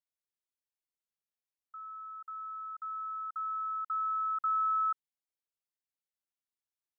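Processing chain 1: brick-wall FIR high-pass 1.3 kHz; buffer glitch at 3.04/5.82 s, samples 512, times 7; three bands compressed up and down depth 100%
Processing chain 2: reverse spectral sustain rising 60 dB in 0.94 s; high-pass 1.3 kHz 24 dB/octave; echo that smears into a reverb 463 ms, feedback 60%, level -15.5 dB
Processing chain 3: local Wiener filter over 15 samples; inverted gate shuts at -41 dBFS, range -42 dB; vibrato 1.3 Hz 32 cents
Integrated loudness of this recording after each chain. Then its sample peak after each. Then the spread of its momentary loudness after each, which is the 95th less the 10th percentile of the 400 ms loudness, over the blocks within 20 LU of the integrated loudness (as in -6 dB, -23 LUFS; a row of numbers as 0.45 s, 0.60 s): -39.5 LUFS, -37.5 LUFS, -46.5 LUFS; -31.5 dBFS, -27.5 dBFS, -41.0 dBFS; 4 LU, 20 LU, 10 LU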